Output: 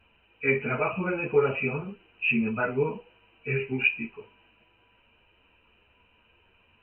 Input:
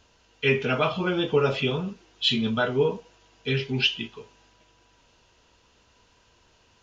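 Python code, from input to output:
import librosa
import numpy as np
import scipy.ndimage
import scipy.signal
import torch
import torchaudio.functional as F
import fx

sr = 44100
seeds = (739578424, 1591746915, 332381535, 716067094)

y = fx.freq_compress(x, sr, knee_hz=2300.0, ratio=4.0)
y = fx.ensemble(y, sr)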